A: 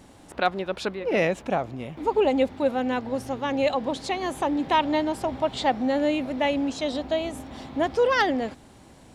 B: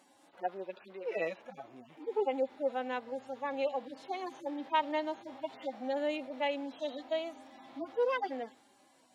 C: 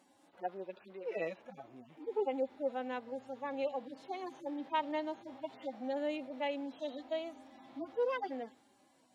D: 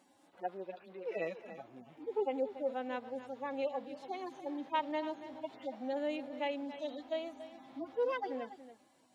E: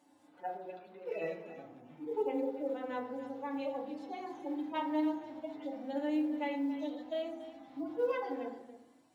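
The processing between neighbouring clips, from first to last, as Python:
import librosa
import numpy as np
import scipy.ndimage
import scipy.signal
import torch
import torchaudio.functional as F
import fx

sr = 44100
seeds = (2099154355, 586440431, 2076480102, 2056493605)

y1 = fx.hpss_only(x, sr, part='harmonic')
y1 = scipy.signal.sosfilt(scipy.signal.butter(2, 420.0, 'highpass', fs=sr, output='sos'), y1)
y1 = y1 * librosa.db_to_amplitude(-7.0)
y2 = fx.low_shelf(y1, sr, hz=340.0, db=7.0)
y2 = y2 * librosa.db_to_amplitude(-5.0)
y3 = y2 + 10.0 ** (-13.0 / 20.0) * np.pad(y2, (int(284 * sr / 1000.0), 0))[:len(y2)]
y4 = fx.rev_fdn(y3, sr, rt60_s=0.67, lf_ratio=1.6, hf_ratio=0.4, size_ms=20.0, drr_db=-0.5)
y4 = fx.quant_float(y4, sr, bits=6)
y4 = y4 * librosa.db_to_amplitude(-4.0)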